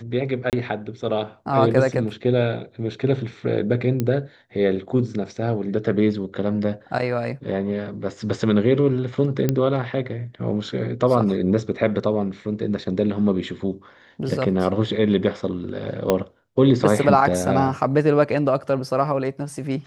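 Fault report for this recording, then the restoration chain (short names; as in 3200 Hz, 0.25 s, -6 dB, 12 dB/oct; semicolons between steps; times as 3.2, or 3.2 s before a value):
0.5–0.53 gap 28 ms
4 pop -10 dBFS
9.49 pop -7 dBFS
16.1 pop -5 dBFS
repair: de-click; interpolate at 0.5, 28 ms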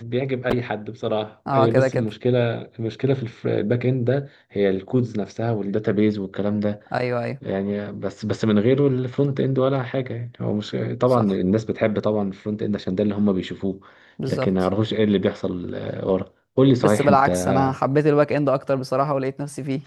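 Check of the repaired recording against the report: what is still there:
16.1 pop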